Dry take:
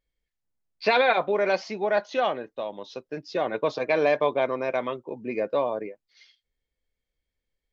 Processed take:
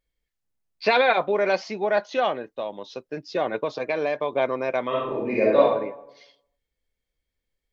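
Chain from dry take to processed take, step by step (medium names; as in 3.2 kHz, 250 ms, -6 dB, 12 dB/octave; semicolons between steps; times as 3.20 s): 3.56–4.33 s: compression 2:1, threshold -27 dBFS, peak gain reduction 6 dB; 4.88–5.60 s: reverb throw, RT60 0.85 s, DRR -6.5 dB; trim +1.5 dB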